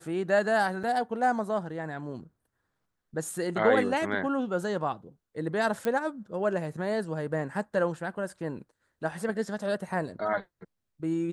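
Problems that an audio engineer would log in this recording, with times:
0:00.83–0:00.84: drop-out 6.3 ms
0:05.85: click −17 dBFS

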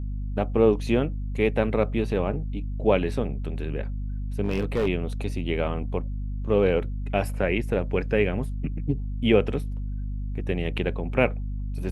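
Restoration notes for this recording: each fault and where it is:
mains hum 50 Hz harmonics 5 −30 dBFS
0:04.42–0:04.88: clipping −19 dBFS

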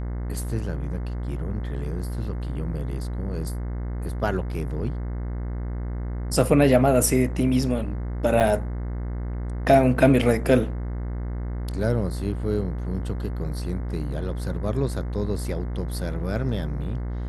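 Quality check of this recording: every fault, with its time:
mains buzz 60 Hz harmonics 36 −29 dBFS
0:08.40–0:08.41: drop-out 7.5 ms

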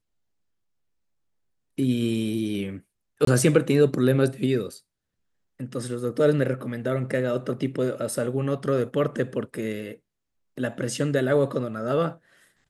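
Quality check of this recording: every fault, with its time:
0:03.25–0:03.27: drop-out 23 ms

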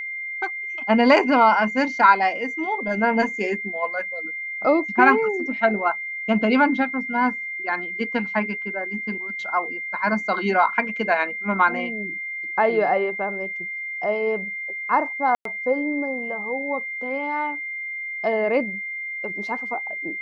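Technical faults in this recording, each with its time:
whistle 2,100 Hz −28 dBFS
0:15.35–0:15.45: drop-out 103 ms

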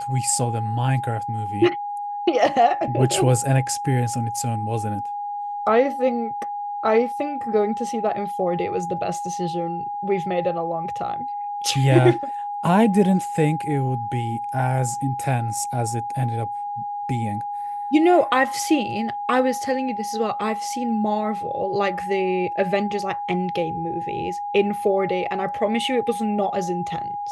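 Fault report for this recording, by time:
whistle 820 Hz −26 dBFS

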